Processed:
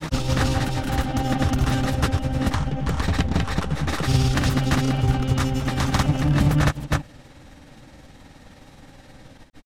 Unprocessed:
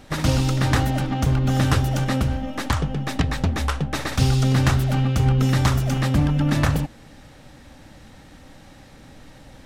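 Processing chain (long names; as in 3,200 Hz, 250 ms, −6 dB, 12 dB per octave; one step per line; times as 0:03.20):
single-tap delay 95 ms −6 dB
granular cloud 100 ms, grains 19 per second, spray 376 ms, pitch spread up and down by 0 semitones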